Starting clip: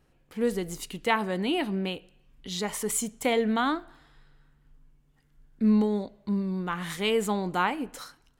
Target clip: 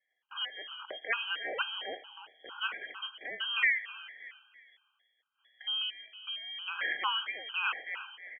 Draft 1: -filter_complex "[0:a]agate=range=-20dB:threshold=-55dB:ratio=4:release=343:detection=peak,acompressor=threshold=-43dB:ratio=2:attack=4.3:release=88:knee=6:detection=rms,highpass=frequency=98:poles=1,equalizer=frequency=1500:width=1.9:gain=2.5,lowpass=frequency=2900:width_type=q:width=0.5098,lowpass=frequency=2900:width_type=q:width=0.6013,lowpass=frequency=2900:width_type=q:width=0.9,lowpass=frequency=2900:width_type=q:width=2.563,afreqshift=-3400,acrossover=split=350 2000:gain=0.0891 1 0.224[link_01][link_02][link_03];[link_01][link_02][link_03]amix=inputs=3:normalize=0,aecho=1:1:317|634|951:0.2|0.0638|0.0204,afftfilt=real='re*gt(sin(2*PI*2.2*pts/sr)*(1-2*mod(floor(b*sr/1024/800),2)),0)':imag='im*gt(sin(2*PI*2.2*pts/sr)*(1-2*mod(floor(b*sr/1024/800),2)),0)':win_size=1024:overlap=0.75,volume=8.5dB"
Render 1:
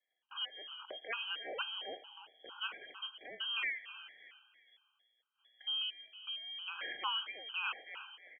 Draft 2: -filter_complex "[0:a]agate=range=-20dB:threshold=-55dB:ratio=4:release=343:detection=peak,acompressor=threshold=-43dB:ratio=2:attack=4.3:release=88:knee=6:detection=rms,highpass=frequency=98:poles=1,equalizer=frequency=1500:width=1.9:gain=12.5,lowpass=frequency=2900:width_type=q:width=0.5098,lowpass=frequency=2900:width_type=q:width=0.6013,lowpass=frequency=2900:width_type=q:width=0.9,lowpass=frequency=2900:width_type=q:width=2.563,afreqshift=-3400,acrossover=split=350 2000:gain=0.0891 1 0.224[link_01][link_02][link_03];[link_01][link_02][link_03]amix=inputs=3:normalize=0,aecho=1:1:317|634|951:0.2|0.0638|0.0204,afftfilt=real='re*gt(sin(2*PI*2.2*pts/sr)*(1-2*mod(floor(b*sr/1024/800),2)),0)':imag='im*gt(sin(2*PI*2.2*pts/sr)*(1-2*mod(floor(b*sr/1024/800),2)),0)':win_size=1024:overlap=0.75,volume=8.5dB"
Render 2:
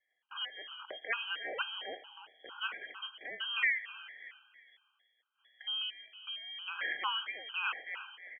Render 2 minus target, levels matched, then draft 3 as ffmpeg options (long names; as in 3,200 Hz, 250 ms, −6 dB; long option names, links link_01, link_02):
downward compressor: peak gain reduction +3 dB
-filter_complex "[0:a]agate=range=-20dB:threshold=-55dB:ratio=4:release=343:detection=peak,acompressor=threshold=-37dB:ratio=2:attack=4.3:release=88:knee=6:detection=rms,highpass=frequency=98:poles=1,equalizer=frequency=1500:width=1.9:gain=12.5,lowpass=frequency=2900:width_type=q:width=0.5098,lowpass=frequency=2900:width_type=q:width=0.6013,lowpass=frequency=2900:width_type=q:width=0.9,lowpass=frequency=2900:width_type=q:width=2.563,afreqshift=-3400,acrossover=split=350 2000:gain=0.0891 1 0.224[link_01][link_02][link_03];[link_01][link_02][link_03]amix=inputs=3:normalize=0,aecho=1:1:317|634|951:0.2|0.0638|0.0204,afftfilt=real='re*gt(sin(2*PI*2.2*pts/sr)*(1-2*mod(floor(b*sr/1024/800),2)),0)':imag='im*gt(sin(2*PI*2.2*pts/sr)*(1-2*mod(floor(b*sr/1024/800),2)),0)':win_size=1024:overlap=0.75,volume=8.5dB"